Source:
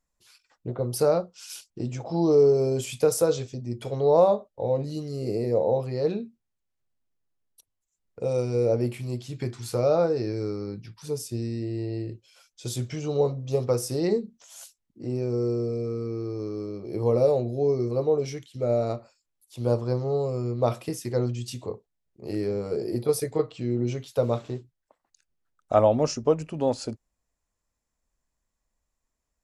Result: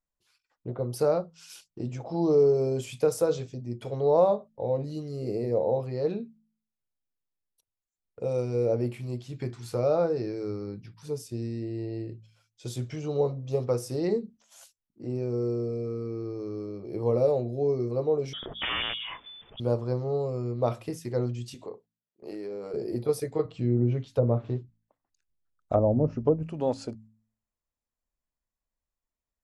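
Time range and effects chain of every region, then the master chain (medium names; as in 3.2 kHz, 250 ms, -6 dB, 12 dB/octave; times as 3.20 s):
18.33–19.60 s: integer overflow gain 20.5 dB + frequency inversion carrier 3.5 kHz + decay stretcher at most 29 dB/s
21.54–22.74 s: high-pass 280 Hz + compression, threshold -30 dBFS
23.45–26.43 s: low-pass that closes with the level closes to 540 Hz, closed at -17.5 dBFS + bass shelf 210 Hz +9.5 dB
whole clip: gate -50 dBFS, range -7 dB; treble shelf 3.9 kHz -7 dB; de-hum 54.85 Hz, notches 5; trim -2.5 dB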